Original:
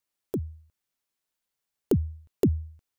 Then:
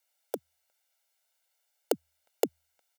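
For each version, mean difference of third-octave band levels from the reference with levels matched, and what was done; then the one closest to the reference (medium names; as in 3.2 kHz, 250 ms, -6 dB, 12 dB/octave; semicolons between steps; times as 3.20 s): 7.0 dB: high-pass 430 Hz 24 dB/octave; band-stop 1.2 kHz, Q 7.1; comb 1.4 ms; trim +6 dB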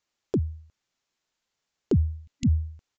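3.0 dB: spectral replace 2.19–2.55 s, 260–2000 Hz; peak limiter -22 dBFS, peak gain reduction 9.5 dB; resampled via 16 kHz; trim +6.5 dB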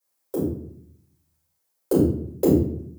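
16.5 dB: high-pass 690 Hz 6 dB/octave; peaking EQ 2.7 kHz -11.5 dB 2.4 oct; simulated room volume 110 m³, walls mixed, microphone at 4.8 m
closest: second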